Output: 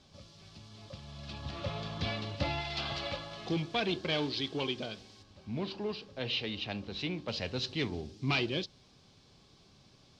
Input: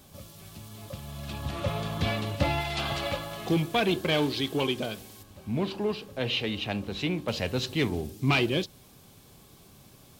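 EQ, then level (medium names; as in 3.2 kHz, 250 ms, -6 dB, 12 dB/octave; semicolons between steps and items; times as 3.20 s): four-pole ladder low-pass 5.8 kHz, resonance 45%; +1.5 dB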